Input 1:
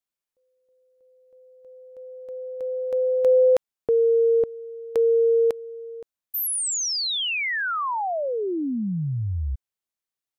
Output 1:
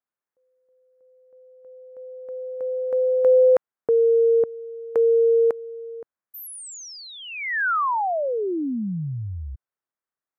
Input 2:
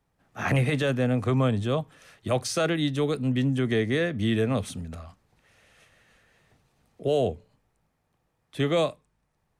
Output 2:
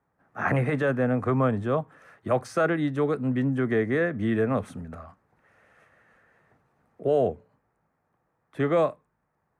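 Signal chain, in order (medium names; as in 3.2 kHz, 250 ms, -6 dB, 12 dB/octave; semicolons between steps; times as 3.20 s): high-pass 160 Hz 6 dB/octave; resonant high shelf 2.3 kHz -13 dB, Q 1.5; trim +1.5 dB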